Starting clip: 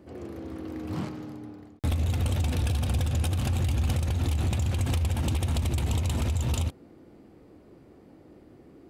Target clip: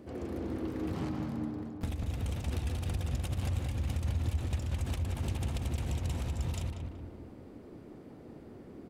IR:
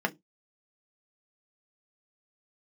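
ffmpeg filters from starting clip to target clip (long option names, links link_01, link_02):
-filter_complex "[0:a]asplit=3[link_01][link_02][link_03];[link_02]asetrate=33038,aresample=44100,atempo=1.33484,volume=-5dB[link_04];[link_03]asetrate=58866,aresample=44100,atempo=0.749154,volume=-17dB[link_05];[link_01][link_04][link_05]amix=inputs=3:normalize=0,acompressor=threshold=-33dB:ratio=6,asplit=2[link_06][link_07];[link_07]adelay=188,lowpass=frequency=1900:poles=1,volume=-3.5dB,asplit=2[link_08][link_09];[link_09]adelay=188,lowpass=frequency=1900:poles=1,volume=0.52,asplit=2[link_10][link_11];[link_11]adelay=188,lowpass=frequency=1900:poles=1,volume=0.52,asplit=2[link_12][link_13];[link_13]adelay=188,lowpass=frequency=1900:poles=1,volume=0.52,asplit=2[link_14][link_15];[link_15]adelay=188,lowpass=frequency=1900:poles=1,volume=0.52,asplit=2[link_16][link_17];[link_17]adelay=188,lowpass=frequency=1900:poles=1,volume=0.52,asplit=2[link_18][link_19];[link_19]adelay=188,lowpass=frequency=1900:poles=1,volume=0.52[link_20];[link_06][link_08][link_10][link_12][link_14][link_16][link_18][link_20]amix=inputs=8:normalize=0"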